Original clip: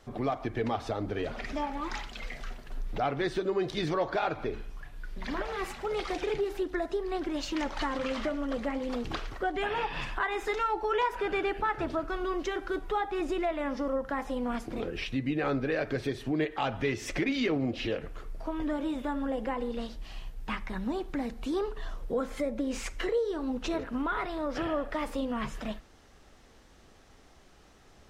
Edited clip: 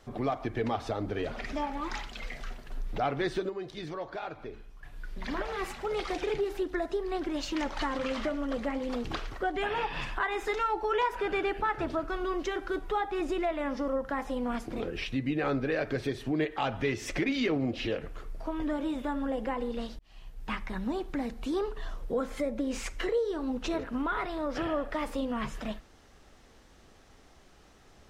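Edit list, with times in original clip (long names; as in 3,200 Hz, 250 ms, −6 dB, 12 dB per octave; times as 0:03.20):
0:03.17–0:05.15: duck −8.5 dB, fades 0.32 s logarithmic
0:19.99–0:20.52: fade in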